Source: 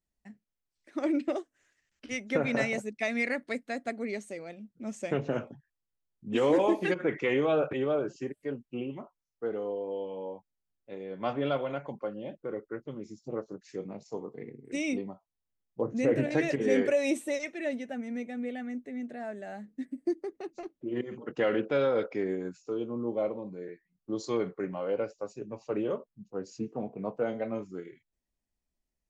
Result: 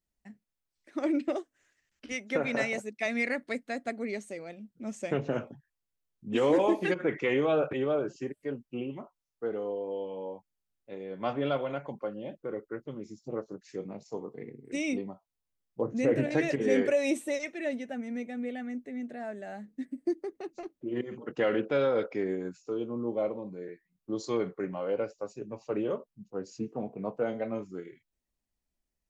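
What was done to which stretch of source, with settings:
2.12–3.06 s: high-pass 250 Hz 6 dB/octave

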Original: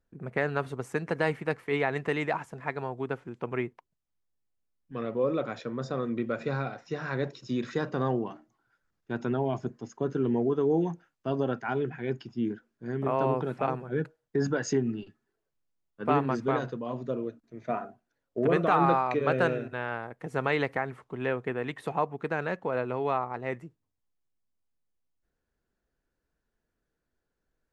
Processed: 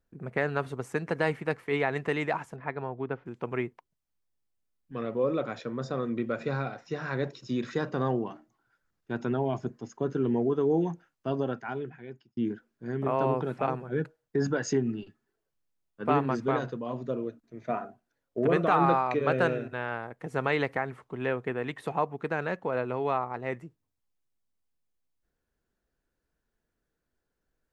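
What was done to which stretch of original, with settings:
2.56–3.26 s: distance through air 280 m
11.27–12.37 s: fade out

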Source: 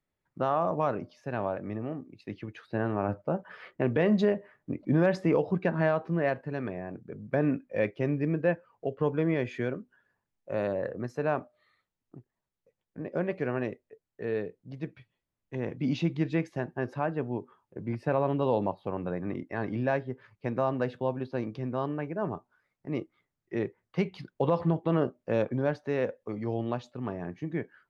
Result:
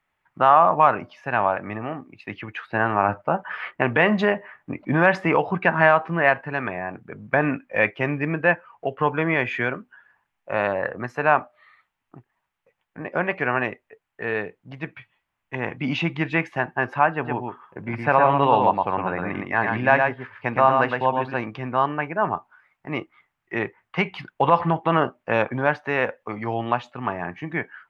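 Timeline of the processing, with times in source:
17.13–21.34 s: delay 114 ms -4 dB
whole clip: high-order bell 1.5 kHz +13.5 dB 2.4 oct; trim +2.5 dB

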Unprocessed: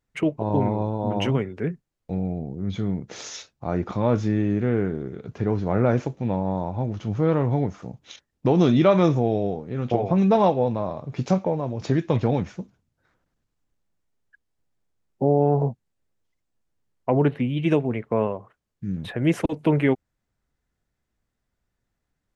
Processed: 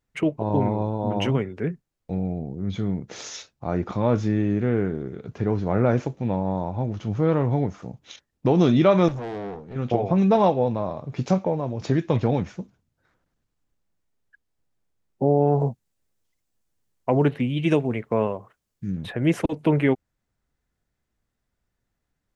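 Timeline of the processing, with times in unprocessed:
9.08–9.76 s: valve stage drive 28 dB, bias 0.65
15.47–18.91 s: treble shelf 4.3 kHz +8.5 dB

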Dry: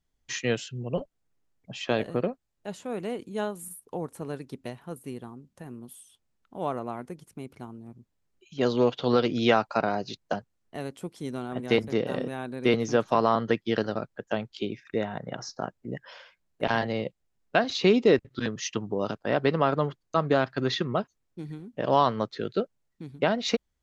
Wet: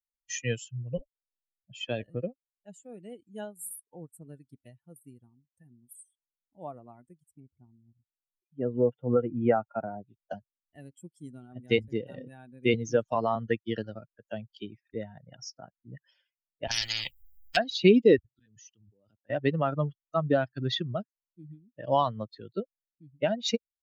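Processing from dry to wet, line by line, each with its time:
7.40–10.21 s: Gaussian low-pass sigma 4.3 samples
16.71–17.57 s: spectrum-flattening compressor 10:1
18.32–19.30 s: level held to a coarse grid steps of 22 dB
whole clip: expander on every frequency bin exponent 2; peaking EQ 1.1 kHz -7 dB 1.2 oct; band-stop 4.1 kHz, Q 16; trim +4.5 dB

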